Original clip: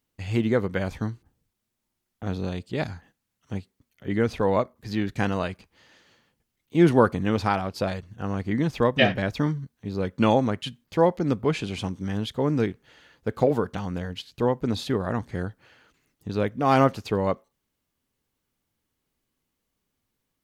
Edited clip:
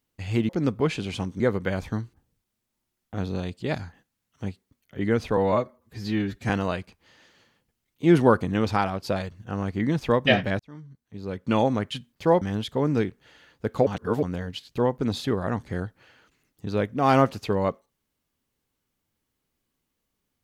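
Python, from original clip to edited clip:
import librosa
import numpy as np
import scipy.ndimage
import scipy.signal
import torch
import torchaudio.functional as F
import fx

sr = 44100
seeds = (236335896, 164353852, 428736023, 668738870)

y = fx.edit(x, sr, fx.stretch_span(start_s=4.46, length_s=0.75, factor=1.5),
    fx.fade_in_span(start_s=9.31, length_s=1.25),
    fx.move(start_s=11.13, length_s=0.91, to_s=0.49),
    fx.reverse_span(start_s=13.49, length_s=0.36), tone=tone)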